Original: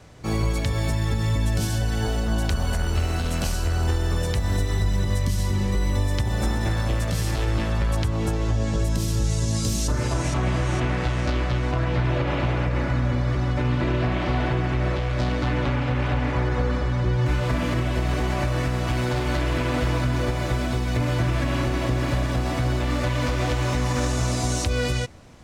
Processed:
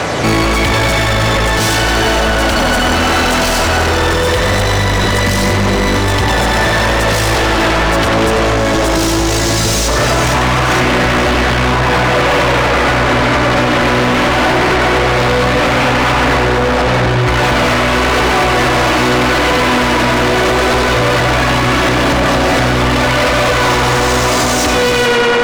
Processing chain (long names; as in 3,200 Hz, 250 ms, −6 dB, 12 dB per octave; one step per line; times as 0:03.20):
in parallel at −4 dB: wave folding −25.5 dBFS
on the sum: phase shifter 0.18 Hz, delay 4.1 ms, feedback 27%
on a send: tape delay 95 ms, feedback 89%, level −5.5 dB, low-pass 4,800 Hz
on the sum: mid-hump overdrive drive 28 dB, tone 3,600 Hz, clips at −11.5 dBFS
boost into a limiter +17.5 dB
level −6 dB